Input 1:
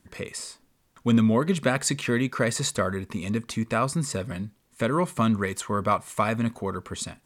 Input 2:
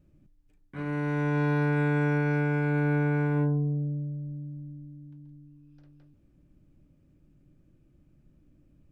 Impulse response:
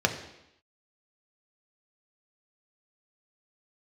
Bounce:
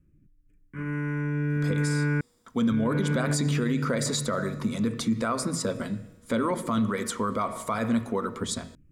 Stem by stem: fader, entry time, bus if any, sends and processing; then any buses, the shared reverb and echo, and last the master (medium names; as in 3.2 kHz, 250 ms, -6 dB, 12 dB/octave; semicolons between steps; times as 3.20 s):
-4.0 dB, 1.50 s, send -15 dB, harmonic-percussive split percussive +8 dB; feedback comb 160 Hz, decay 1.7 s, mix 40%; small resonant body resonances 230/3400 Hz, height 7 dB
+3.0 dB, 0.00 s, muted 2.21–2.72 s, no send, rotary cabinet horn 0.85 Hz; static phaser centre 1.7 kHz, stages 4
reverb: on, RT60 0.85 s, pre-delay 3 ms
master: peak limiter -17.5 dBFS, peak gain reduction 11 dB